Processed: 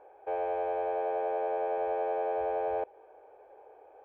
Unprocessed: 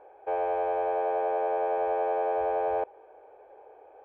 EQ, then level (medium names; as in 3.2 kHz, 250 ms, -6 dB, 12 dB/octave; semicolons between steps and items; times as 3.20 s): dynamic bell 1.1 kHz, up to -4 dB, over -43 dBFS, Q 1.6; -2.5 dB